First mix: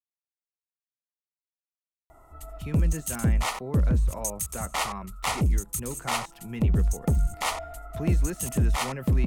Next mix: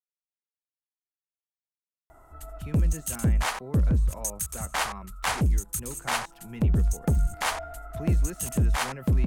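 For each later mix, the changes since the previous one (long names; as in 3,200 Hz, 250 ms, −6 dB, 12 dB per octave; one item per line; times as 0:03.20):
speech −4.5 dB
background: remove Butterworth band-reject 1,600 Hz, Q 4.5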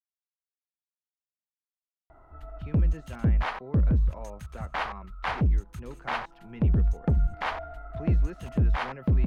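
speech: add bass and treble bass −5 dB, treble +8 dB
master: add high-frequency loss of the air 330 metres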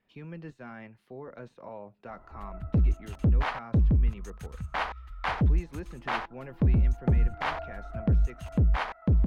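speech: entry −2.50 s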